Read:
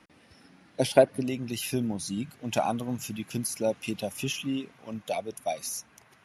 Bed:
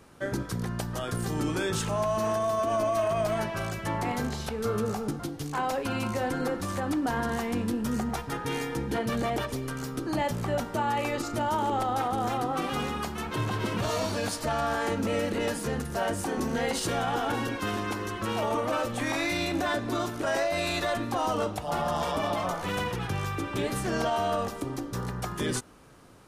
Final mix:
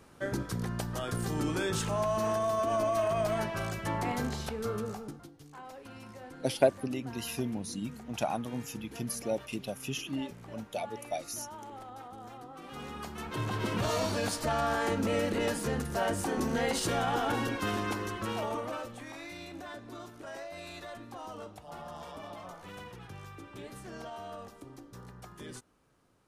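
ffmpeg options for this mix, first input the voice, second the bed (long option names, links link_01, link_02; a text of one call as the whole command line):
ffmpeg -i stem1.wav -i stem2.wav -filter_complex "[0:a]adelay=5650,volume=-5dB[link_01];[1:a]volume=14dB,afade=type=out:start_time=4.39:duration=0.92:silence=0.16788,afade=type=in:start_time=12.6:duration=1.22:silence=0.149624,afade=type=out:start_time=17.9:duration=1.14:silence=0.199526[link_02];[link_01][link_02]amix=inputs=2:normalize=0" out.wav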